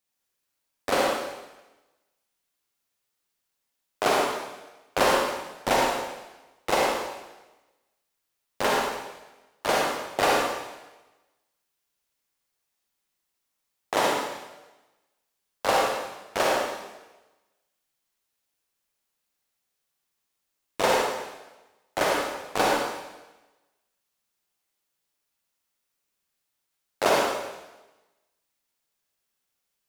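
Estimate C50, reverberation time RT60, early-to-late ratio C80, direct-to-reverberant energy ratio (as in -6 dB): -1.5 dB, 1.1 s, 1.5 dB, -2.5 dB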